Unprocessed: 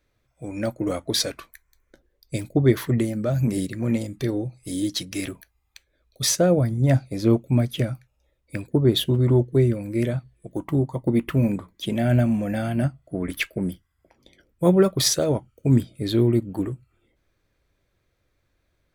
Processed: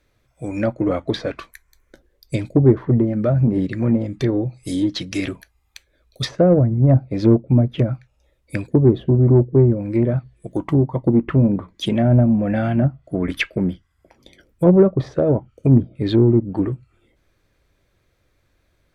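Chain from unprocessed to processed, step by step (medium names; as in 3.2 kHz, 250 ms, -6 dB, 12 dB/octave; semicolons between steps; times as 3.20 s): low-pass that closes with the level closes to 750 Hz, closed at -17.5 dBFS; in parallel at -5.5 dB: saturation -16 dBFS, distortion -13 dB; on the sum: trim +2.5 dB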